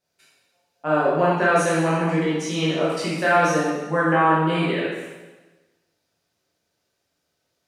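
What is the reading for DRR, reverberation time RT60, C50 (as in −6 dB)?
−9.0 dB, 1.2 s, −1.5 dB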